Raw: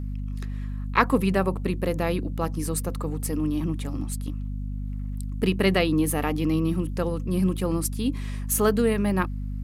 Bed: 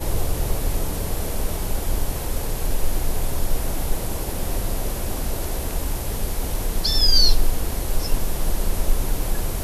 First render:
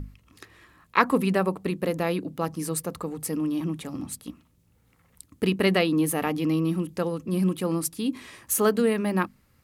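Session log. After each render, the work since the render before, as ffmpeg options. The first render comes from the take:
ffmpeg -i in.wav -af "bandreject=frequency=50:width_type=h:width=6,bandreject=frequency=100:width_type=h:width=6,bandreject=frequency=150:width_type=h:width=6,bandreject=frequency=200:width_type=h:width=6,bandreject=frequency=250:width_type=h:width=6" out.wav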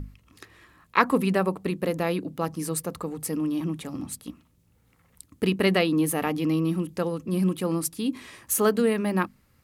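ffmpeg -i in.wav -af anull out.wav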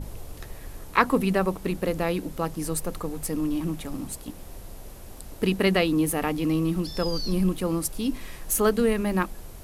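ffmpeg -i in.wav -i bed.wav -filter_complex "[1:a]volume=-17dB[link_01];[0:a][link_01]amix=inputs=2:normalize=0" out.wav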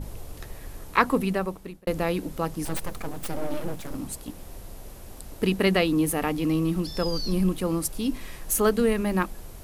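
ffmpeg -i in.wav -filter_complex "[0:a]asettb=1/sr,asplit=3[link_01][link_02][link_03];[link_01]atrim=end=2.654[link_04];[link_02]atrim=start=2.65:end=3.95,asetpts=PTS-STARTPTS,afade=type=in:duration=0.004:curve=qsin,afade=type=out:start_time=1.296:duration=0.004:curve=qsin,aeval=exprs='abs(val(0))':channel_layout=same[link_05];[link_03]atrim=start=3.946[link_06];[link_04][link_05]acrossfade=duration=0.004:curve1=hsin:curve2=qsin[link_07];[link_07][link_06]acrossfade=duration=0.004:curve1=qsin:curve2=hsin,asplit=2[link_08][link_09];[link_08]atrim=end=1.87,asetpts=PTS-STARTPTS,afade=type=out:start_time=0.83:duration=1.04:curve=qsin[link_10];[link_09]atrim=start=1.87,asetpts=PTS-STARTPTS,afade=type=in:duration=0.004:curve=hsin[link_11];[link_10][link_11]concat=n=2:v=0:a=1" out.wav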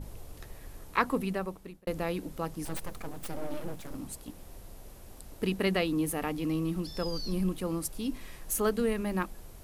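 ffmpeg -i in.wav -af "volume=-6.5dB" out.wav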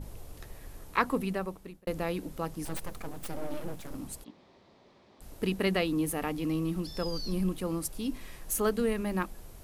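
ffmpeg -i in.wav -filter_complex "[0:a]asplit=3[link_01][link_02][link_03];[link_01]afade=type=out:start_time=4.23:duration=0.02[link_04];[link_02]highpass=240,equalizer=frequency=300:width_type=q:width=4:gain=-4,equalizer=frequency=490:width_type=q:width=4:gain=-6,equalizer=frequency=730:width_type=q:width=4:gain=-5,equalizer=frequency=1500:width_type=q:width=4:gain=-8,equalizer=frequency=2800:width_type=q:width=4:gain=-7,lowpass=frequency=4100:width=0.5412,lowpass=frequency=4100:width=1.3066,afade=type=in:start_time=4.23:duration=0.02,afade=type=out:start_time=5.2:duration=0.02[link_05];[link_03]afade=type=in:start_time=5.2:duration=0.02[link_06];[link_04][link_05][link_06]amix=inputs=3:normalize=0" out.wav

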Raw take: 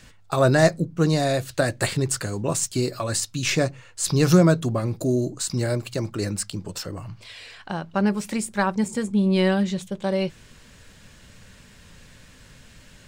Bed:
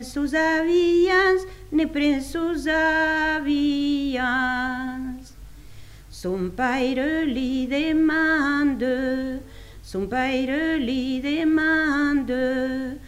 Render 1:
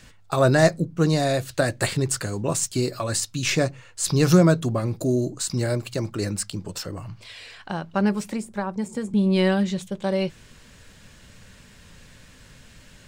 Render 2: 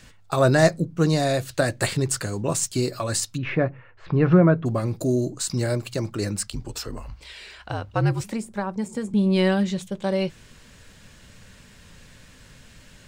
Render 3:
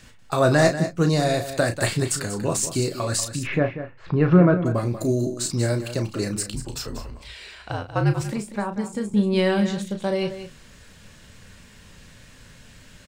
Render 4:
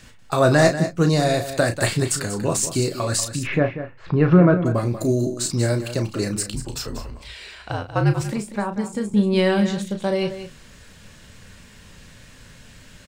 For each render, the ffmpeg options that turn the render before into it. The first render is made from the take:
ffmpeg -i in.wav -filter_complex "[0:a]asettb=1/sr,asplit=3[link_01][link_02][link_03];[link_01]atrim=end=8.234[link_04];[link_02]atrim=start=8.23:end=9.14,asetpts=PTS-STARTPTS,afade=type=in:duration=0.004:curve=qsin,afade=type=out:start_time=0.906:duration=0.004:curve=qsin,acrossover=split=220|1200[link_05][link_06][link_07];[link_05]acompressor=threshold=-34dB:ratio=4[link_08];[link_06]acompressor=threshold=-26dB:ratio=4[link_09];[link_07]acompressor=threshold=-42dB:ratio=4[link_10];[link_08][link_09][link_10]amix=inputs=3:normalize=0[link_11];[link_03]atrim=start=9.136[link_12];[link_04][link_11]acrossfade=duration=0.004:curve1=hsin:curve2=qsin[link_13];[link_13][link_12]acrossfade=duration=0.004:curve1=qsin:curve2=hsin" out.wav
ffmpeg -i in.wav -filter_complex "[0:a]asplit=3[link_01][link_02][link_03];[link_01]afade=type=out:start_time=3.36:duration=0.02[link_04];[link_02]lowpass=frequency=2200:width=0.5412,lowpass=frequency=2200:width=1.3066,afade=type=in:start_time=3.36:duration=0.02,afade=type=out:start_time=4.65:duration=0.02[link_05];[link_03]afade=type=in:start_time=4.65:duration=0.02[link_06];[link_04][link_05][link_06]amix=inputs=3:normalize=0,asettb=1/sr,asplit=3[link_07][link_08][link_09];[link_07]atrim=end=6.474[link_10];[link_08]atrim=start=6.47:end=8.24,asetpts=PTS-STARTPTS,afade=type=in:duration=0.004:curve=qsin,afade=type=out:start_time=1.766:duration=0.004:curve=qsin,afreqshift=-65[link_11];[link_09]atrim=start=8.236[link_12];[link_10][link_11]acrossfade=duration=0.004:curve1=hsin:curve2=qsin[link_13];[link_13][link_12]acrossfade=duration=0.004:curve1=qsin:curve2=hsin" out.wav
ffmpeg -i in.wav -filter_complex "[0:a]asplit=2[link_01][link_02];[link_02]adelay=34,volume=-8dB[link_03];[link_01][link_03]amix=inputs=2:normalize=0,asplit=2[link_04][link_05];[link_05]aecho=0:1:189:0.266[link_06];[link_04][link_06]amix=inputs=2:normalize=0" out.wav
ffmpeg -i in.wav -af "volume=2dB,alimiter=limit=-3dB:level=0:latency=1" out.wav

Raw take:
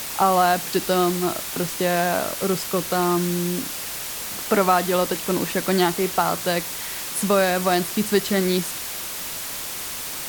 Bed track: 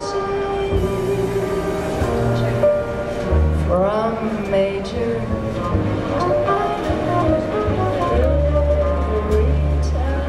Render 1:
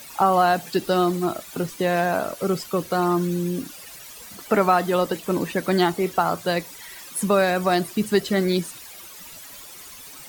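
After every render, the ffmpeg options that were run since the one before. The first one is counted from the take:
ffmpeg -i in.wav -af "afftdn=noise_reduction=14:noise_floor=-31" out.wav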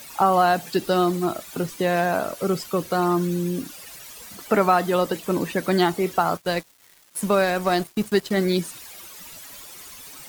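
ffmpeg -i in.wav -filter_complex "[0:a]asettb=1/sr,asplit=3[link_01][link_02][link_03];[link_01]atrim=end=6.374[link_04];[link_02]atrim=start=6.37:end=8.37,asetpts=PTS-STARTPTS,afade=type=in:duration=0.004:curve=qsin,afade=type=out:start_time=1.996:duration=0.004:curve=qsin,aeval=exprs='sgn(val(0))*max(abs(val(0))-0.0158,0)':channel_layout=same[link_05];[link_03]atrim=start=8.366[link_06];[link_04][link_05]acrossfade=duration=0.004:curve1=hsin:curve2=qsin[link_07];[link_07][link_06]acrossfade=duration=0.004:curve1=qsin:curve2=hsin" out.wav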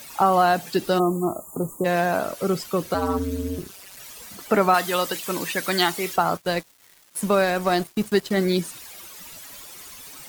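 ffmpeg -i in.wav -filter_complex "[0:a]asplit=3[link_01][link_02][link_03];[link_01]afade=type=out:start_time=0.98:duration=0.02[link_04];[link_02]asuperstop=centerf=3000:order=20:qfactor=0.53,afade=type=in:start_time=0.98:duration=0.02,afade=type=out:start_time=1.84:duration=0.02[link_05];[link_03]afade=type=in:start_time=1.84:duration=0.02[link_06];[link_04][link_05][link_06]amix=inputs=3:normalize=0,asettb=1/sr,asplit=3[link_07][link_08][link_09];[link_07]atrim=end=2.944[link_10];[link_08]atrim=start=2.94:end=3.97,asetpts=PTS-STARTPTS,afade=type=in:duration=0.004:curve=qsin,afade=type=out:start_time=1.026:duration=0.004:curve=qsin,aeval=exprs='val(0)*sin(2*PI*96*n/s)':channel_layout=same[link_11];[link_09]atrim=start=3.966[link_12];[link_10][link_11]acrossfade=duration=0.004:curve1=hsin:curve2=qsin[link_13];[link_13][link_12]acrossfade=duration=0.004:curve1=qsin:curve2=hsin,asettb=1/sr,asplit=3[link_14][link_15][link_16];[link_14]atrim=end=4.744[link_17];[link_15]atrim=start=4.74:end=6.16,asetpts=PTS-STARTPTS,afade=type=in:duration=0.004:curve=qsin,afade=type=out:start_time=1.416:duration=0.004:curve=qsin,tiltshelf=frequency=970:gain=-7.5[link_18];[link_16]atrim=start=6.156[link_19];[link_17][link_18]acrossfade=duration=0.004:curve1=hsin:curve2=qsin[link_20];[link_20][link_19]acrossfade=duration=0.004:curve1=qsin:curve2=hsin" out.wav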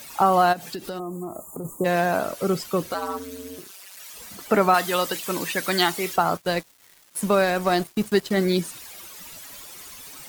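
ffmpeg -i in.wav -filter_complex "[0:a]asplit=3[link_01][link_02][link_03];[link_01]afade=type=out:start_time=0.52:duration=0.02[link_04];[link_02]acompressor=threshold=-29dB:ratio=6:attack=3.2:release=140:knee=1:detection=peak,afade=type=in:start_time=0.52:duration=0.02,afade=type=out:start_time=1.64:duration=0.02[link_05];[link_03]afade=type=in:start_time=1.64:duration=0.02[link_06];[link_04][link_05][link_06]amix=inputs=3:normalize=0,asettb=1/sr,asplit=3[link_07][link_08][link_09];[link_07]atrim=end=2.924[link_10];[link_08]atrim=start=2.92:end=4.14,asetpts=PTS-STARTPTS,afade=type=in:duration=0.004:curve=qsin,afade=type=out:start_time=1.216:duration=0.004:curve=qsin,highpass=frequency=850:poles=1[link_11];[link_09]atrim=start=4.136[link_12];[link_10][link_11]acrossfade=duration=0.004:curve1=hsin:curve2=qsin[link_13];[link_13][link_12]acrossfade=duration=0.004:curve1=qsin:curve2=hsin" out.wav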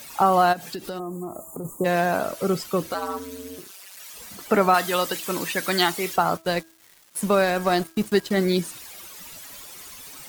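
ffmpeg -i in.wav -af "bandreject=frequency=326.2:width_type=h:width=4,bandreject=frequency=652.4:width_type=h:width=4,bandreject=frequency=978.6:width_type=h:width=4,bandreject=frequency=1304.8:width_type=h:width=4,bandreject=frequency=1631:width_type=h:width=4" out.wav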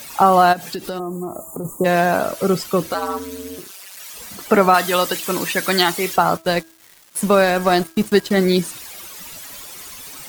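ffmpeg -i in.wav -af "volume=5.5dB,alimiter=limit=-2dB:level=0:latency=1" out.wav

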